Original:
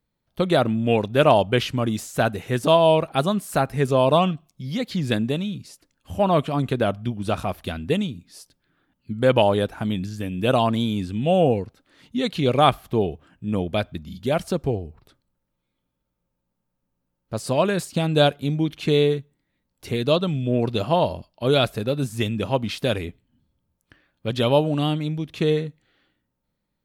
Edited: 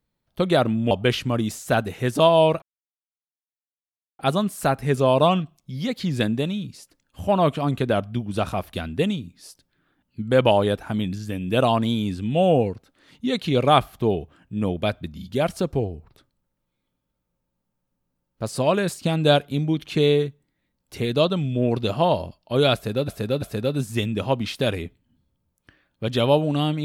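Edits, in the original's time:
0:00.91–0:01.39: remove
0:03.10: splice in silence 1.57 s
0:21.65–0:21.99: repeat, 3 plays

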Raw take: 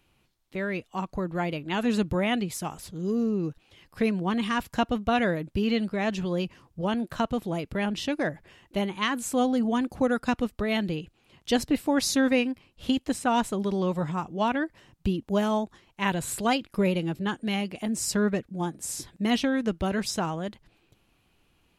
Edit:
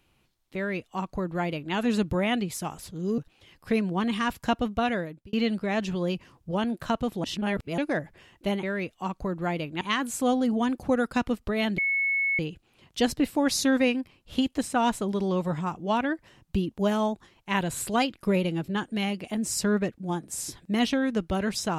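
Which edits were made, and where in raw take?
0:00.56–0:01.74: duplicate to 0:08.93
0:03.18–0:03.48: remove
0:04.80–0:05.63: fade out equal-power
0:07.54–0:08.08: reverse
0:10.90: insert tone 2,200 Hz −22.5 dBFS 0.61 s

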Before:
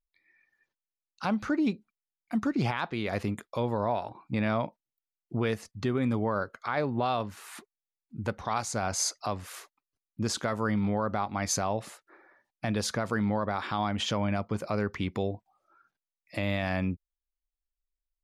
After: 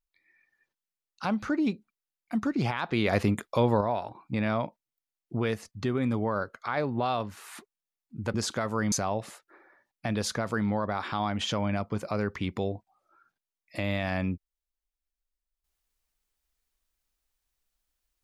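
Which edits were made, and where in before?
0:02.89–0:03.81: clip gain +6 dB
0:08.34–0:10.21: remove
0:10.79–0:11.51: remove

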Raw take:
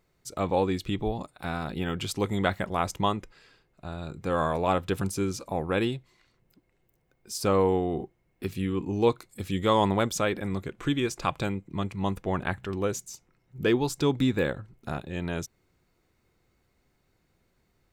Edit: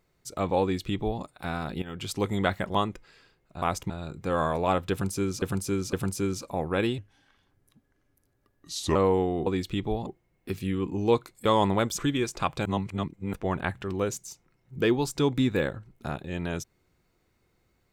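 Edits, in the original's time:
0:00.62–0:01.22: duplicate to 0:08.01
0:01.82–0:02.16: fade in, from −14 dB
0:02.75–0:03.03: move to 0:03.90
0:04.91–0:05.42: repeat, 3 plays
0:05.96–0:07.50: play speed 78%
0:09.40–0:09.66: remove
0:10.19–0:10.81: remove
0:11.48–0:12.16: reverse

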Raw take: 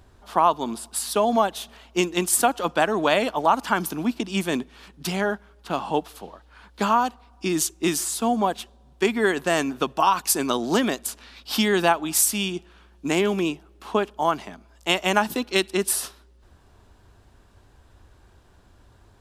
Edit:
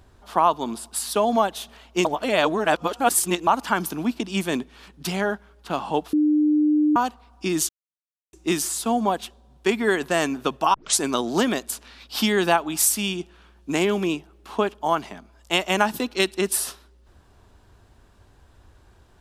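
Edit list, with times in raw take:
0:02.05–0:03.47: reverse
0:06.13–0:06.96: beep over 301 Hz −15.5 dBFS
0:07.69: splice in silence 0.64 s
0:10.10: tape start 0.25 s

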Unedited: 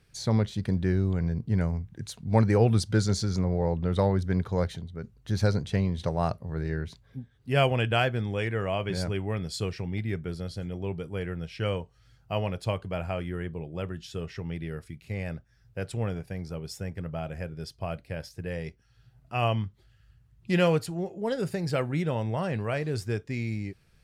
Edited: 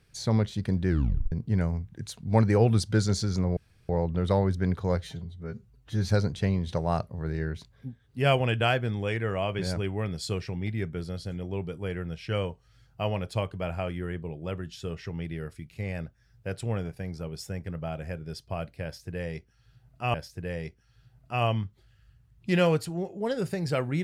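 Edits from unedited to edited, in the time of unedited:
0:00.89: tape stop 0.43 s
0:03.57: splice in room tone 0.32 s
0:04.66–0:05.40: time-stretch 1.5×
0:18.15–0:19.45: repeat, 2 plays

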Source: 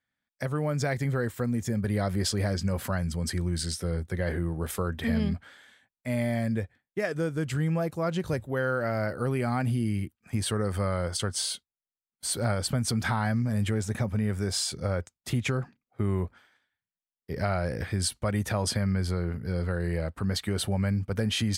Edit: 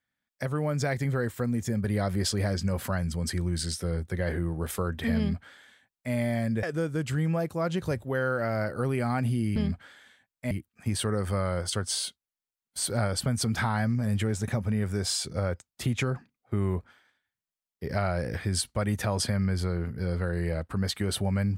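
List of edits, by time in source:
0:05.18–0:06.13: duplicate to 0:09.98
0:06.63–0:07.05: remove

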